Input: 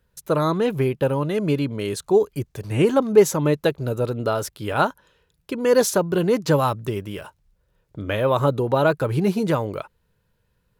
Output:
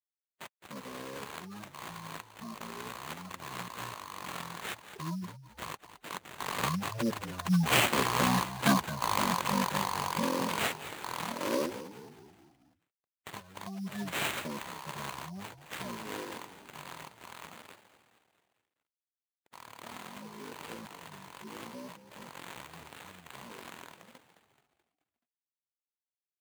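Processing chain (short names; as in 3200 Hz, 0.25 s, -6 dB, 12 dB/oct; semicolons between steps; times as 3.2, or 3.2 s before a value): rattling part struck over -30 dBFS, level -17 dBFS; Doppler pass-by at 3.66, 11 m/s, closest 4.1 m; wide varispeed 0.409×; companded quantiser 4-bit; RIAA curve recording; on a send: frequency-shifting echo 0.215 s, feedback 53%, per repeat -55 Hz, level -13 dB; on the sum: spectral gate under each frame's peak -15 dB strong; sample-rate reducer 5400 Hz, jitter 20%; HPF 110 Hz 12 dB/oct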